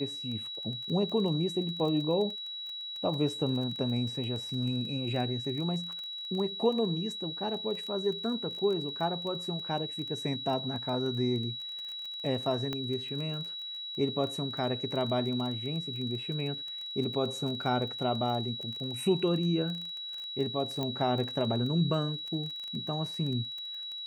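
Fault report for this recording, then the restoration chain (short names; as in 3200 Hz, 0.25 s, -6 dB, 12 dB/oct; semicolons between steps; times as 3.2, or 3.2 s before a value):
crackle 21/s -36 dBFS
tone 3900 Hz -37 dBFS
12.73 pop -20 dBFS
20.83 pop -20 dBFS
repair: de-click; notch 3900 Hz, Q 30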